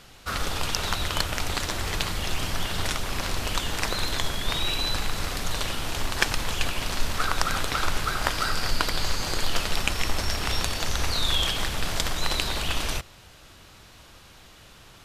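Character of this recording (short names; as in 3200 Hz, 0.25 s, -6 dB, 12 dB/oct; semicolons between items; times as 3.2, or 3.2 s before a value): noise floor -50 dBFS; spectral tilt -3.5 dB/oct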